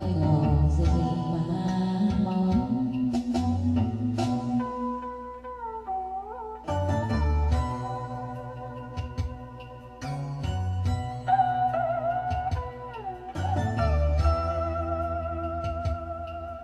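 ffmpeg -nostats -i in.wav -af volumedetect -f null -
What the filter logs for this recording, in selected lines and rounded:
mean_volume: -27.1 dB
max_volume: -12.1 dB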